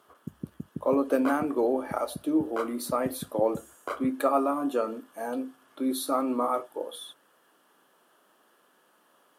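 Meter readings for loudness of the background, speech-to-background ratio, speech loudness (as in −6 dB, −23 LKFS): −40.5 LKFS, 11.5 dB, −29.0 LKFS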